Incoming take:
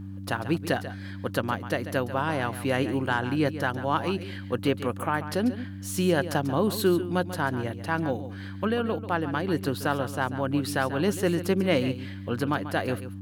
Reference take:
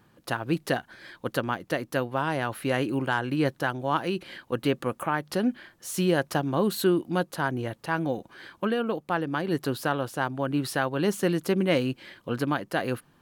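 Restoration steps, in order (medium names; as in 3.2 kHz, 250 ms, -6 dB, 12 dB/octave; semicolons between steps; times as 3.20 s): de-hum 96.9 Hz, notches 3; inverse comb 140 ms -12.5 dB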